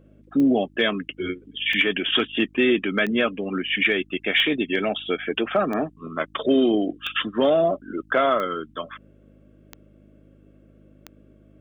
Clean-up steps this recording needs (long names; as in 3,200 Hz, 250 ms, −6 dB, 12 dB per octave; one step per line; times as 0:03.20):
click removal
hum removal 51.4 Hz, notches 6